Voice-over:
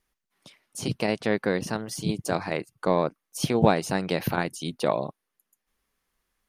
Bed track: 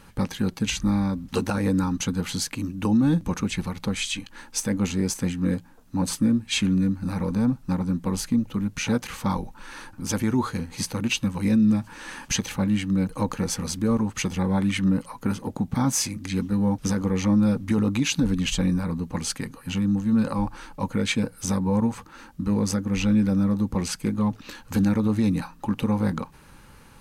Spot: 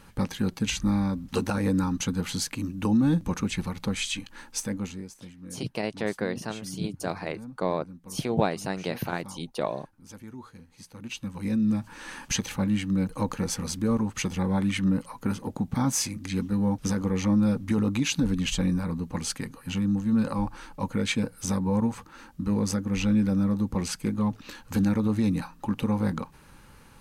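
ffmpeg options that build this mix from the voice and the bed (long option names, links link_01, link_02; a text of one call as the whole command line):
ffmpeg -i stem1.wav -i stem2.wav -filter_complex "[0:a]adelay=4750,volume=-4.5dB[link_01];[1:a]volume=15dB,afade=type=out:start_time=4.42:duration=0.68:silence=0.133352,afade=type=in:start_time=10.88:duration=1.11:silence=0.141254[link_02];[link_01][link_02]amix=inputs=2:normalize=0" out.wav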